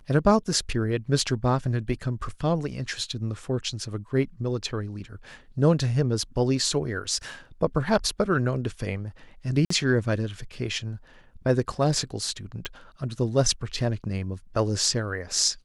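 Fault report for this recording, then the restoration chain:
9.65–9.7 gap 54 ms
12.65 pop -18 dBFS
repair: de-click; interpolate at 9.65, 54 ms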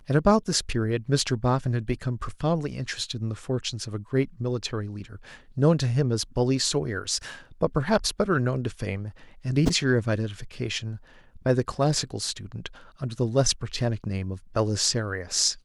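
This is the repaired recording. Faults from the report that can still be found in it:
none

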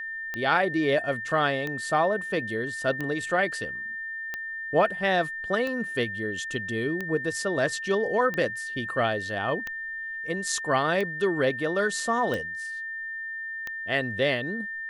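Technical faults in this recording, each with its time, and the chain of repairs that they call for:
tick 45 rpm -18 dBFS
tone 1800 Hz -32 dBFS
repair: de-click; notch 1800 Hz, Q 30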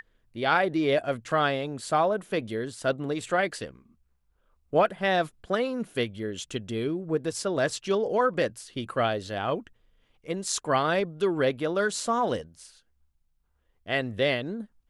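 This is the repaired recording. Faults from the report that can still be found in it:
none

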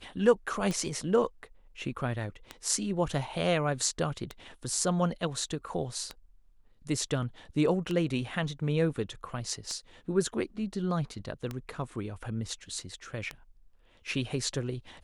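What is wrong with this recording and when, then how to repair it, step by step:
tick 33 1/3 rpm -20 dBFS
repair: de-click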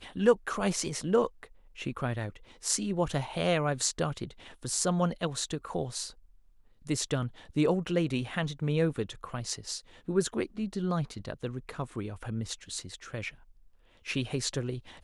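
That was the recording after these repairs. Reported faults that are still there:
none

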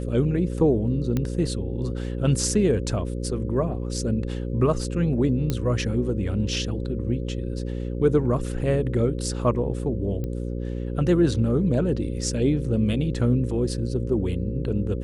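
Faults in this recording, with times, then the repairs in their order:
buzz 60 Hz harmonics 9 -29 dBFS
1.17 pop -13 dBFS
5.5 pop -11 dBFS
10.24 pop -20 dBFS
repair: de-click; de-hum 60 Hz, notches 9

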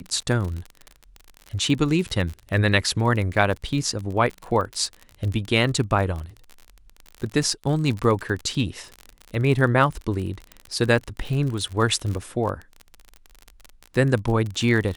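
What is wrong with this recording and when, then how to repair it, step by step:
crackle 40/s -28 dBFS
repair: de-click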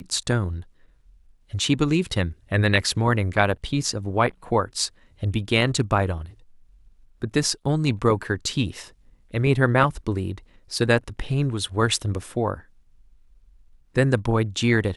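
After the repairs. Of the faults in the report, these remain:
none

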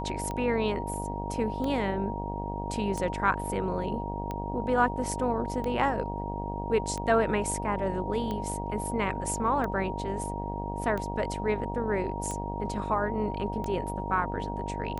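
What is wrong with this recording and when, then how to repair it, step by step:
buzz 50 Hz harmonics 19 -35 dBFS
tick 45 rpm -21 dBFS
tone 940 Hz -36 dBFS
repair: de-click; notch 940 Hz, Q 30; de-hum 50 Hz, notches 19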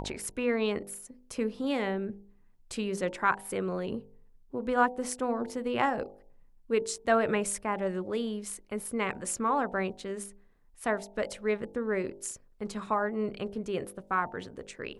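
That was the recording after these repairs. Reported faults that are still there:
none

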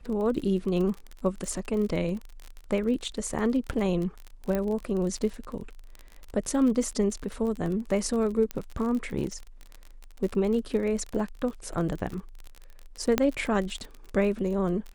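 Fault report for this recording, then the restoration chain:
crackle 39/s -32 dBFS
4.55 pop -16 dBFS
8.51 pop -16 dBFS
13.18 pop -8 dBFS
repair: de-click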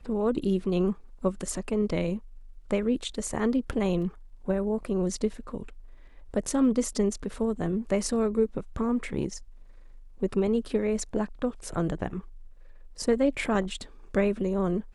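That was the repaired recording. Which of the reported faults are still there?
none

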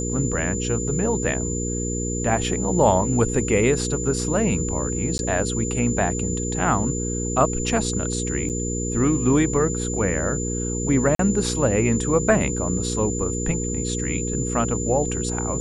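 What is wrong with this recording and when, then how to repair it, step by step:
hum 60 Hz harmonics 8 -27 dBFS
tone 7100 Hz -29 dBFS
5.18–5.19 gap 11 ms
8.49–8.5 gap 7.9 ms
11.15–11.19 gap 43 ms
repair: notch 7100 Hz, Q 30; de-hum 60 Hz, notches 8; interpolate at 5.18, 11 ms; interpolate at 8.49, 7.9 ms; interpolate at 11.15, 43 ms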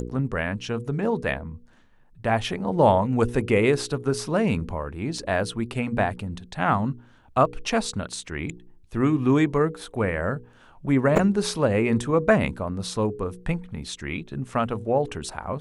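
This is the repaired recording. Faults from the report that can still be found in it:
none

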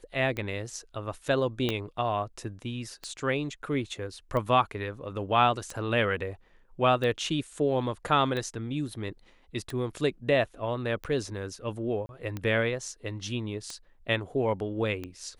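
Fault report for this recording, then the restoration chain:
tick 45 rpm -21 dBFS
1.69 pop -14 dBFS
12.06–12.09 gap 31 ms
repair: de-click; interpolate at 12.06, 31 ms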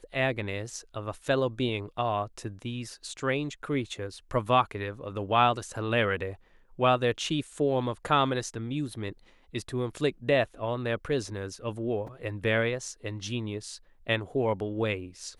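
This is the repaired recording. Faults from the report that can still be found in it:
1.69 pop

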